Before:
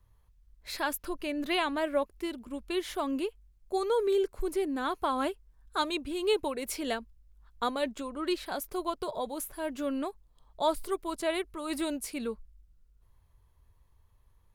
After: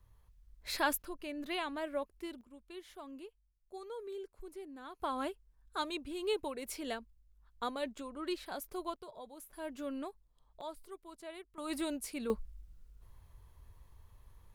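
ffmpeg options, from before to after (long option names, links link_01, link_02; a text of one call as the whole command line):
ffmpeg -i in.wav -af "asetnsamples=nb_out_samples=441:pad=0,asendcmd='1.02 volume volume -8.5dB;2.41 volume volume -17dB;5 volume volume -7dB;8.96 volume volume -15dB;9.53 volume volume -8dB;10.61 volume volume -17dB;11.58 volume volume -4.5dB;12.3 volume volume 6dB',volume=0dB" out.wav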